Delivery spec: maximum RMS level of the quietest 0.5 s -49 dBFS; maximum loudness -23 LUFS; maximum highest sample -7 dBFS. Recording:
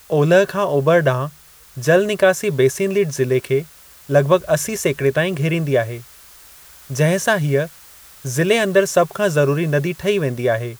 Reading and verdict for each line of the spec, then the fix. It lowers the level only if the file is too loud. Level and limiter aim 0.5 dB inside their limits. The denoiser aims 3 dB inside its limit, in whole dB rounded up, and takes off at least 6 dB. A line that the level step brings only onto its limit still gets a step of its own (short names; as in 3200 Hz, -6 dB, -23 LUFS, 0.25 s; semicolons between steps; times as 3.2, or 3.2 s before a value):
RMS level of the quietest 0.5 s -44 dBFS: fail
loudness -18.0 LUFS: fail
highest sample -2.0 dBFS: fail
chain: gain -5.5 dB